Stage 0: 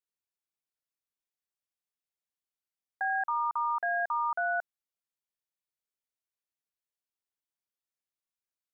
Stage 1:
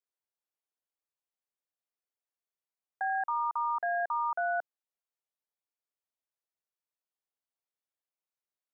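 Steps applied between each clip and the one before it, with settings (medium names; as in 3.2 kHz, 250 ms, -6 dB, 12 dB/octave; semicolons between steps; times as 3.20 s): high-pass 560 Hz 12 dB/octave; tilt shelf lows +8 dB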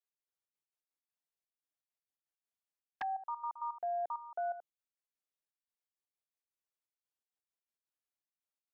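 touch-sensitive flanger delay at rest 9.8 ms, full sweep at -32 dBFS; trance gate "x..xx.x.x.x.xxx" 166 bpm -12 dB; trim -1.5 dB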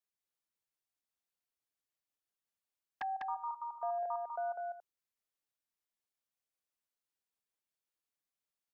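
delay 199 ms -3.5 dB; trim -1 dB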